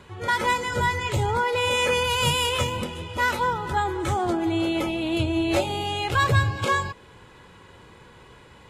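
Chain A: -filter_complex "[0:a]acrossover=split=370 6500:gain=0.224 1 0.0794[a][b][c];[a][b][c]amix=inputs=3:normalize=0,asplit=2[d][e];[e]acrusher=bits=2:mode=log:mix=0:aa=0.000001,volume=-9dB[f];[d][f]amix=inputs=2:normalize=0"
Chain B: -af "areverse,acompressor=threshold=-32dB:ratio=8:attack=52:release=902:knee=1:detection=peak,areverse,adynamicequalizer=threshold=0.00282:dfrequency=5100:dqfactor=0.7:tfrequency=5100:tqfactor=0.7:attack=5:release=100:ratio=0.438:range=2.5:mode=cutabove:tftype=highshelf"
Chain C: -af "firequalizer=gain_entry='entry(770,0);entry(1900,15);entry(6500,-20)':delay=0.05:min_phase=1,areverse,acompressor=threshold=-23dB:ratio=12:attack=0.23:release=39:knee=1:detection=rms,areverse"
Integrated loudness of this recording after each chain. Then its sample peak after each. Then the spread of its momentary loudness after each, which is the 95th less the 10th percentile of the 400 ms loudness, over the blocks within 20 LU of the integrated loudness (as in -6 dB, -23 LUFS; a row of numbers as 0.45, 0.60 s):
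-22.5, -34.5, -27.5 LUFS; -8.0, -21.0, -20.5 dBFS; 7, 15, 15 LU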